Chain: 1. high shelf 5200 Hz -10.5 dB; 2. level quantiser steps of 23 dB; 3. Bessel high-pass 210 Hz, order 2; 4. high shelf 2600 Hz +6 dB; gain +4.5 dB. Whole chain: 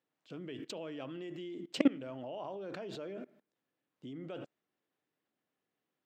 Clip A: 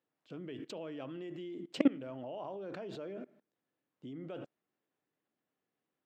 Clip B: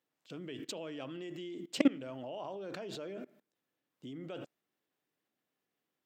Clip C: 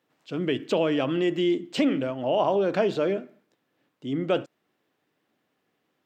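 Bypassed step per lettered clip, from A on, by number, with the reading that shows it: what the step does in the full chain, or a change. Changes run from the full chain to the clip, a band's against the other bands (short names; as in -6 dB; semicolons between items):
4, 4 kHz band -3.5 dB; 1, 8 kHz band +5.0 dB; 2, crest factor change -13.5 dB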